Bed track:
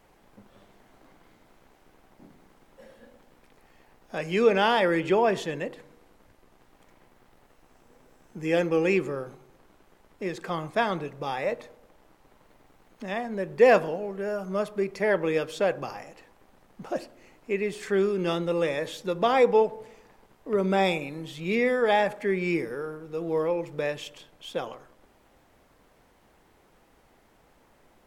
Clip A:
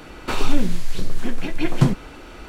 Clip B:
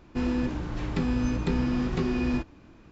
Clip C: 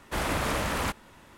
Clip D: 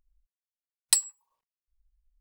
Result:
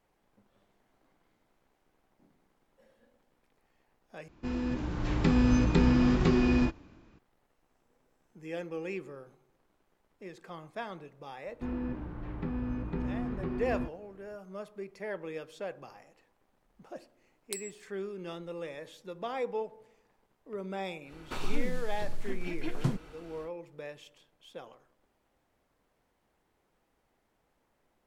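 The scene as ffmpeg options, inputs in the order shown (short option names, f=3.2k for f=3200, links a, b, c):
-filter_complex "[2:a]asplit=2[a][b];[0:a]volume=-14dB[c];[a]dynaudnorm=f=150:g=9:m=10dB[d];[b]lowpass=1.8k[e];[4:a]acompressor=threshold=-33dB:ratio=6:attack=3.2:release=140:knee=1:detection=peak[f];[c]asplit=2[g][h];[g]atrim=end=4.284[i];[d]atrim=end=2.91,asetpts=PTS-STARTPTS,volume=-7dB[j];[h]atrim=start=7.186[k];[e]atrim=end=2.91,asetpts=PTS-STARTPTS,volume=-8dB,afade=t=in:d=0.004:c=hsin,afade=t=out:st=2.906:d=0.004:c=hsin,adelay=505386S[l];[f]atrim=end=2.2,asetpts=PTS-STARTPTS,volume=-3dB,afade=t=in:d=0.004:c=hsin,afade=t=out:st=2.196:d=0.004:c=hsin,adelay=16600[m];[1:a]atrim=end=2.48,asetpts=PTS-STARTPTS,volume=-13.5dB,afade=t=in:d=0.1,afade=t=out:st=2.38:d=0.1,adelay=21030[n];[i][j]acrossfade=d=0.004:c1=hsin:c2=hsin[o];[o][k]acrossfade=d=0.004:c1=hsin:c2=hsin[p];[p][l][m][n]amix=inputs=4:normalize=0"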